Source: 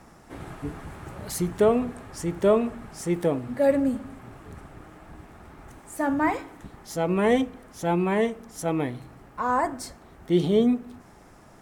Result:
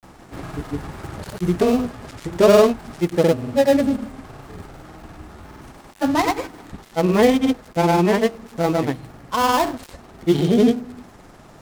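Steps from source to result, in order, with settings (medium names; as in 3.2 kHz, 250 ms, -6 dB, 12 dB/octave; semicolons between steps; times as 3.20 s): dead-time distortion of 0.14 ms; granulator, pitch spread up and down by 0 st; trim +7.5 dB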